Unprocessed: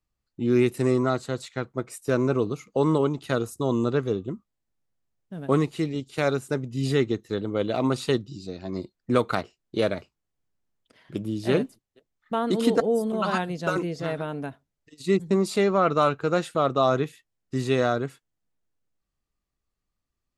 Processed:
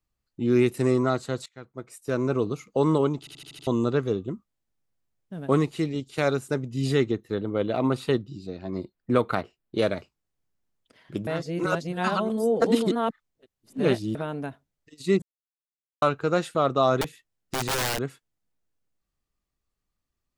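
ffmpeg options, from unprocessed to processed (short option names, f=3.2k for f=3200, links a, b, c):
-filter_complex "[0:a]asettb=1/sr,asplit=3[a][b][c];[a]atrim=end=7.114[d];[b]atrim=start=7.11:end=9.78,asetpts=PTS-STARTPTS,afade=t=in:d=0.004:c=qsin,afade=t=out:st=2.666:d=0.004:c=qsin,equalizer=f=6.4k:t=o:w=1.4:g=-9.5[e];[c]atrim=start=9.776[f];[d][e]acrossfade=d=0.004:c1=hsin:c2=qsin[g];[g][f]acrossfade=d=0.004:c1=qsin:c2=hsin,asettb=1/sr,asplit=3[h][i][j];[h]atrim=end=17.014[k];[i]atrim=start=17.01:end=18,asetpts=PTS-STARTPTS,afade=t=in:d=0.004:c=qsin,afade=t=out:st=0.986:d=0.004:c=qsin,aeval=exprs='(mod(11.9*val(0)+1,2)-1)/11.9':c=same[l];[j]atrim=start=17.996[m];[k][l]acrossfade=d=0.004:c1=hsin:c2=qsin[n];[n][m]acrossfade=d=0.004:c1=qsin:c2=hsin,asplit=12[o][p][q][r][s][t][u][v][w][x][y][z];[o]atrim=end=1.46,asetpts=PTS-STARTPTS,afade=t=out:st=1.456:d=0.004:c=hsin:silence=0.105925[aa];[p]atrim=start=1.46:end=3.272,asetpts=PTS-STARTPTS,afade=t=in:d=1.06:silence=0.105925[ab];[q]atrim=start=3.188:end=3.272[ac];[r]atrim=start=3.188:end=3.272[ad];[s]atrim=start=3.188:end=3.272[ae];[t]atrim=start=3.188:end=3.272[af];[u]atrim=start=3.188:end=3.272[ag];[v]atrim=start=3.668:end=11.272[ah];[w]atrim=start=11.268:end=14.152,asetpts=PTS-STARTPTS,areverse[ai];[x]atrim=start=14.148:end=15.22,asetpts=PTS-STARTPTS,afade=t=out:st=1.068:d=0.004:c=hsin[aj];[y]atrim=start=15.22:end=16.02,asetpts=PTS-STARTPTS,volume=0[ak];[z]atrim=start=16.02,asetpts=PTS-STARTPTS,afade=t=in:d=0.004:c=hsin[al];[aa][ab]concat=n=2:v=0:a=1[am];[am][ac]acrossfade=d=0.004:c1=hsin:c2=hsin[an];[an][ad]acrossfade=d=0.004:c1=hsin:c2=hsin[ao];[ao][ae]acrossfade=d=0.004:c1=hsin:c2=hsin[ap];[ap][af]acrossfade=d=0.004:c1=hsin:c2=hsin[aq];[aq][ag]acrossfade=d=0.004:c1=hsin:c2=hsin[ar];[ar][ah]acrossfade=d=0.004:c1=hsin:c2=hsin[as];[as][ai]acrossfade=d=0.004:c1=hsin:c2=hsin[at];[aj][ak][al]concat=n=3:v=0:a=1[au];[at][au]acrossfade=d=0.004:c1=hsin:c2=hsin"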